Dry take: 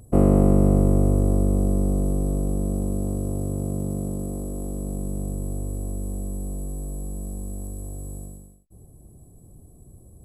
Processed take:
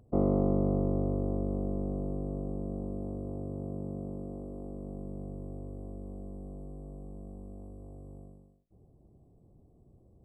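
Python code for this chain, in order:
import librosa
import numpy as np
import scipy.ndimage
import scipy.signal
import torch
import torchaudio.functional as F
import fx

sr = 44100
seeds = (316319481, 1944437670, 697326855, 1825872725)

y = scipy.signal.savgol_filter(x, 65, 4, mode='constant')
y = fx.low_shelf(y, sr, hz=150.0, db=-8.0)
y = y + 10.0 ** (-19.0 / 20.0) * np.pad(y, (int(95 * sr / 1000.0), 0))[:len(y)]
y = y * 10.0 ** (-7.0 / 20.0)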